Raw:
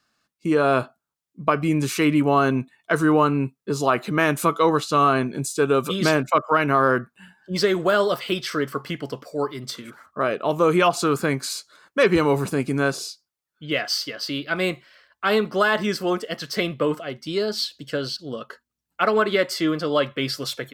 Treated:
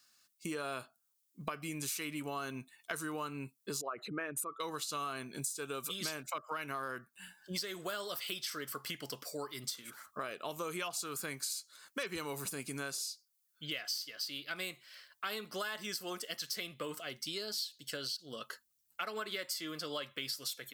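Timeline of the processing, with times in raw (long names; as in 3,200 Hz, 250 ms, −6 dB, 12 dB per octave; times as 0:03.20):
0:03.81–0:04.60: spectral envelope exaggerated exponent 2
whole clip: first-order pre-emphasis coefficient 0.9; downward compressor 5 to 1, threshold −46 dBFS; level +8 dB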